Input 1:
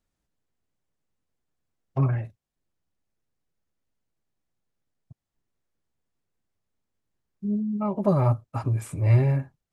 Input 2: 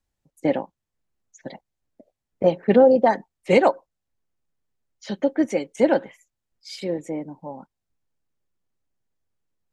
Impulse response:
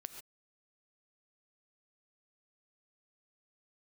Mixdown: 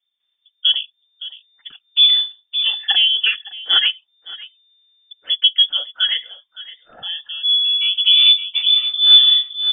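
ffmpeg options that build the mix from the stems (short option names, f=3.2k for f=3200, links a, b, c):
-filter_complex "[0:a]lowshelf=f=470:g=8.5,volume=-5dB,asplit=4[a][b][c][d];[b]volume=-10.5dB[e];[c]volume=-8dB[f];[1:a]aphaser=in_gain=1:out_gain=1:delay=1.1:decay=0.72:speed=0.21:type=sinusoidal,adelay=200,volume=-4.5dB,asplit=2[g][h];[h]volume=-18.5dB[i];[d]apad=whole_len=437905[j];[g][j]sidechaincompress=threshold=-32dB:ratio=8:attack=16:release=635[k];[2:a]atrim=start_sample=2205[l];[e][l]afir=irnorm=-1:irlink=0[m];[f][i]amix=inputs=2:normalize=0,aecho=0:1:565:1[n];[a][k][m][n]amix=inputs=4:normalize=0,dynaudnorm=f=550:g=3:m=8dB,lowpass=f=3.1k:t=q:w=0.5098,lowpass=f=3.1k:t=q:w=0.6013,lowpass=f=3.1k:t=q:w=0.9,lowpass=f=3.1k:t=q:w=2.563,afreqshift=-3600"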